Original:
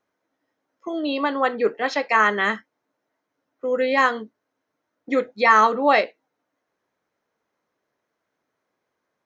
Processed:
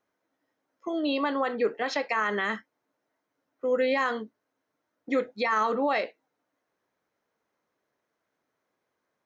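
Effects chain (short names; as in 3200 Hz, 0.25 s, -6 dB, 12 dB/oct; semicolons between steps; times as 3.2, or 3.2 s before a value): limiter -14.5 dBFS, peak gain reduction 11.5 dB; gain -2.5 dB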